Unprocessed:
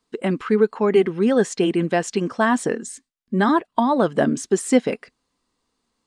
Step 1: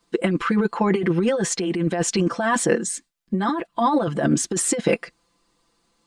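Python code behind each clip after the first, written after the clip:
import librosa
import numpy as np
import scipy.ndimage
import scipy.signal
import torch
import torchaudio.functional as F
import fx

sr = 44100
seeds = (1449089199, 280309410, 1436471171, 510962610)

y = x + 0.99 * np.pad(x, (int(5.9 * sr / 1000.0), 0))[:len(x)]
y = fx.over_compress(y, sr, threshold_db=-20.0, ratio=-1.0)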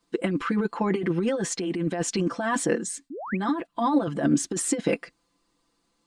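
y = fx.peak_eq(x, sr, hz=280.0, db=8.5, octaves=0.2)
y = fx.spec_paint(y, sr, seeds[0], shape='rise', start_s=3.1, length_s=0.27, low_hz=240.0, high_hz=2700.0, level_db=-30.0)
y = y * 10.0 ** (-5.5 / 20.0)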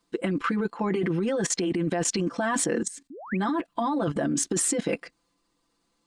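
y = fx.level_steps(x, sr, step_db=16)
y = y * 10.0 ** (6.5 / 20.0)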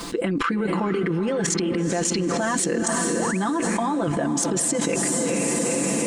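y = fx.echo_diffused(x, sr, ms=450, feedback_pct=49, wet_db=-9.5)
y = fx.env_flatten(y, sr, amount_pct=100)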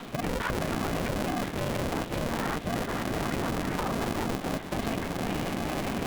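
y = fx.lpc_vocoder(x, sr, seeds[1], excitation='whisper', order=8)
y = y * np.sign(np.sin(2.0 * np.pi * 230.0 * np.arange(len(y)) / sr))
y = y * 10.0 ** (-6.5 / 20.0)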